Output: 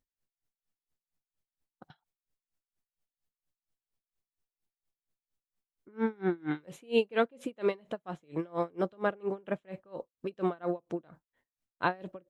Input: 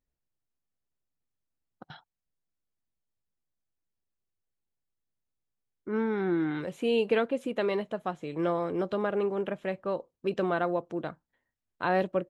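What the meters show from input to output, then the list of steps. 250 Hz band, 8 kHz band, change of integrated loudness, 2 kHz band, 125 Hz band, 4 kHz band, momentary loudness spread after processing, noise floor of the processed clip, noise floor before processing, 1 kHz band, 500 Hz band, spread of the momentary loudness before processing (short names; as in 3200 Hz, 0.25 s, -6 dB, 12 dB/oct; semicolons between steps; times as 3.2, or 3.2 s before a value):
-4.0 dB, n/a, -3.5 dB, -3.0 dB, -3.5 dB, -3.5 dB, 10 LU, under -85 dBFS, under -85 dBFS, -3.5 dB, -4.0 dB, 8 LU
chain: dB-linear tremolo 4.3 Hz, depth 31 dB; gain +3 dB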